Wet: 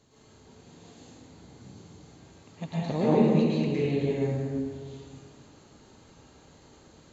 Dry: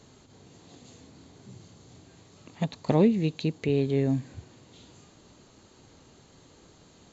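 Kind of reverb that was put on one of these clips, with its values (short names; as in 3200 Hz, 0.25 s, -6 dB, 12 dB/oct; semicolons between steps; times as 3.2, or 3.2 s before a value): plate-style reverb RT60 2 s, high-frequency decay 0.5×, pre-delay 0.1 s, DRR -10 dB; gain -9 dB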